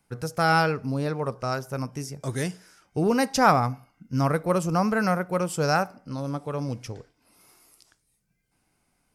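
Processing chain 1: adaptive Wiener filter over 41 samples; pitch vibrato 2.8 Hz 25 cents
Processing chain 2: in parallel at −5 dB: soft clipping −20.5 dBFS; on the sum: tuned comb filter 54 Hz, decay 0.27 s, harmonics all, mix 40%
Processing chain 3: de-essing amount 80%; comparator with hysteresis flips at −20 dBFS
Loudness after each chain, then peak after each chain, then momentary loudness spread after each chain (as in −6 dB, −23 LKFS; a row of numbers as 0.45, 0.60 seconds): −26.5, −25.5, −33.0 LKFS; −5.5, −7.0, −21.5 dBFS; 14, 12, 9 LU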